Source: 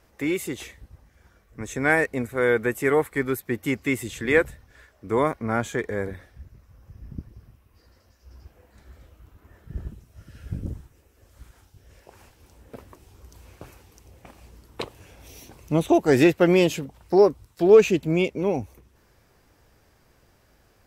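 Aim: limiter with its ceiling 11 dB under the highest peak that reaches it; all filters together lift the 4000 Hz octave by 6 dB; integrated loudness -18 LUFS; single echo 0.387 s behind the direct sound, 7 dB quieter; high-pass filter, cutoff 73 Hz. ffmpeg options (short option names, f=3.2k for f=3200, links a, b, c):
-af "highpass=73,equalizer=f=4k:t=o:g=8,alimiter=limit=-15dB:level=0:latency=1,aecho=1:1:387:0.447,volume=9dB"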